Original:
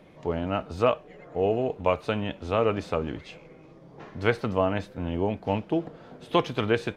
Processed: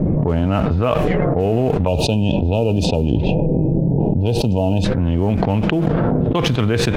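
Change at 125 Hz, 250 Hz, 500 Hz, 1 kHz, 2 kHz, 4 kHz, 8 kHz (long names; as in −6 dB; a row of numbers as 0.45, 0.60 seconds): +17.5 dB, +13.5 dB, +7.0 dB, +5.0 dB, +5.0 dB, +11.0 dB, can't be measured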